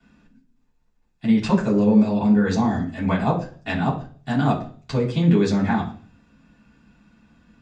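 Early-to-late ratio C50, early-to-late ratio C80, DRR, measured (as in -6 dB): 10.5 dB, 14.5 dB, -16.5 dB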